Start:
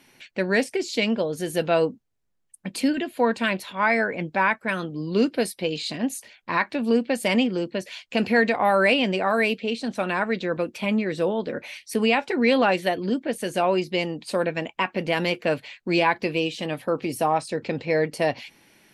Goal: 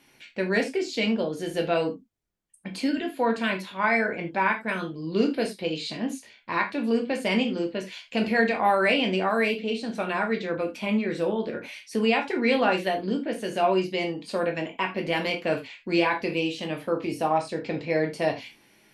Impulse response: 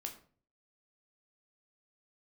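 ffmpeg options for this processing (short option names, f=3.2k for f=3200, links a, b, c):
-filter_complex "[0:a]acrossover=split=7200[a][b];[b]acompressor=threshold=-48dB:ratio=4:attack=1:release=60[c];[a][c]amix=inputs=2:normalize=0[d];[1:a]atrim=start_sample=2205,atrim=end_sample=4410[e];[d][e]afir=irnorm=-1:irlink=0"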